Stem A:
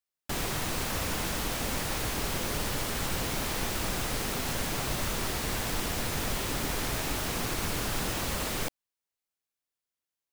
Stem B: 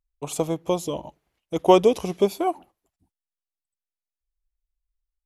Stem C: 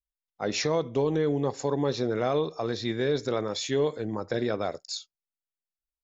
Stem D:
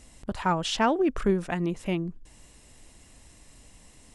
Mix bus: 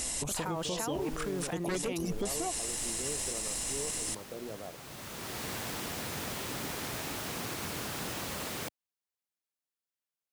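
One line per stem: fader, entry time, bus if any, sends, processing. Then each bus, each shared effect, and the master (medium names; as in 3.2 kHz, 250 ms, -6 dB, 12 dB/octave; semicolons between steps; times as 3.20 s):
-5.0 dB, 0.00 s, bus A, no send, high-pass 100 Hz 12 dB/octave; auto duck -11 dB, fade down 0.80 s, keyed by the third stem
+0.5 dB, 0.00 s, bus A, no send, reverb removal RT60 2 s; tone controls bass +8 dB, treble +11 dB
-14.0 dB, 0.00 s, no bus, no send, steep low-pass 1.2 kHz; hum notches 60/120 Hz
-14.0 dB, 0.00 s, no bus, no send, tone controls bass -9 dB, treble +9 dB; level flattener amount 100%
bus A: 0.0 dB, wavefolder -9.5 dBFS; compression, threshold -29 dBFS, peak gain reduction 15 dB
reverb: none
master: peak limiter -24.5 dBFS, peak gain reduction 11.5 dB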